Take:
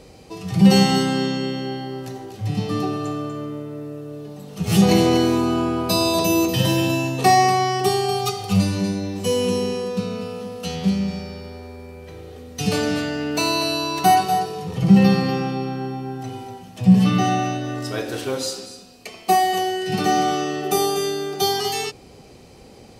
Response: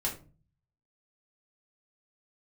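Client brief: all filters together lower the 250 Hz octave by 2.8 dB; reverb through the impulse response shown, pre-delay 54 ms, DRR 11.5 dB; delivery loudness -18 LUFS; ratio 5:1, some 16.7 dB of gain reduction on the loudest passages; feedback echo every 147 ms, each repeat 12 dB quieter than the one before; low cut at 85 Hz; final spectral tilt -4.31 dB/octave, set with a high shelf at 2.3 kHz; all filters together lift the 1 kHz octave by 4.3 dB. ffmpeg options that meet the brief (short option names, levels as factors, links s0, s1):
-filter_complex "[0:a]highpass=85,equalizer=f=250:t=o:g=-4.5,equalizer=f=1000:t=o:g=6,highshelf=f=2300:g=7,acompressor=threshold=0.0447:ratio=5,aecho=1:1:147|294|441:0.251|0.0628|0.0157,asplit=2[s0][s1];[1:a]atrim=start_sample=2205,adelay=54[s2];[s1][s2]afir=irnorm=-1:irlink=0,volume=0.158[s3];[s0][s3]amix=inputs=2:normalize=0,volume=3.55"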